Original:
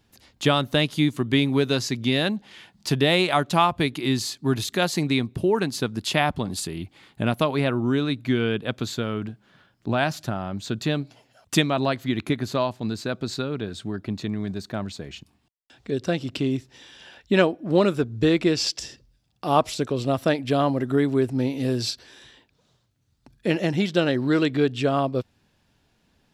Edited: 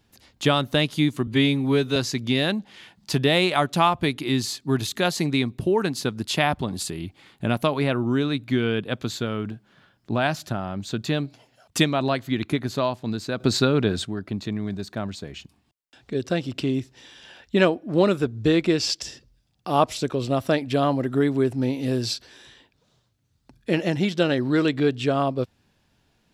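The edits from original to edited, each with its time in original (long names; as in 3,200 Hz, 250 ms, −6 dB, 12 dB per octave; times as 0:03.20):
0:01.27–0:01.73: time-stretch 1.5×
0:13.17–0:13.82: clip gain +8.5 dB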